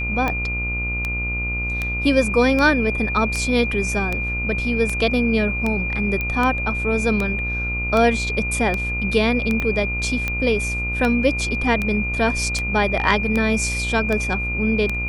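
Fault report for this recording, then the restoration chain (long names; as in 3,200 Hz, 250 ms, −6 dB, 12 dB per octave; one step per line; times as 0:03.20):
mains buzz 60 Hz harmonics 25 −27 dBFS
scratch tick 78 rpm −10 dBFS
whistle 2,400 Hz −24 dBFS
0:06.21: click −12 dBFS
0:09.60: click −12 dBFS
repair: click removal
hum removal 60 Hz, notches 25
notch filter 2,400 Hz, Q 30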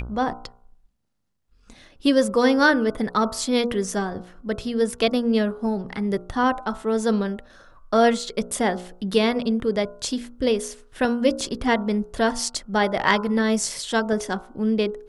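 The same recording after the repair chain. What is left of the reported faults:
0:09.60: click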